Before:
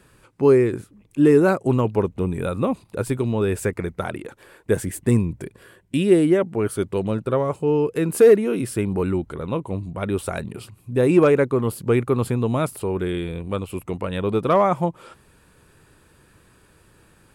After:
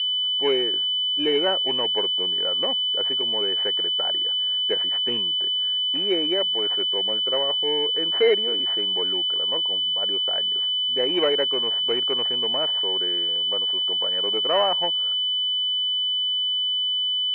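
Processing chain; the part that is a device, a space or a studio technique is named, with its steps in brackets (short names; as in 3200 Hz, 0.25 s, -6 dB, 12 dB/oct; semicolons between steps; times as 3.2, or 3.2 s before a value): 9.57–10.33 air absorption 430 m; toy sound module (decimation joined by straight lines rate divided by 4×; pulse-width modulation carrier 3000 Hz; speaker cabinet 620–4600 Hz, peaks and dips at 1200 Hz -8 dB, 1900 Hz +7 dB, 3000 Hz +6 dB)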